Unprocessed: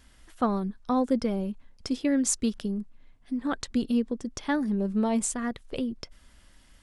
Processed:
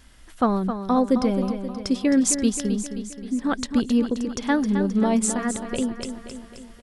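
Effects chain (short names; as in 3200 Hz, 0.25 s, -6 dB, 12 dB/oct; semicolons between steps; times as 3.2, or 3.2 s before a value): feedback echo 0.264 s, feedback 56%, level -9 dB; gain +5 dB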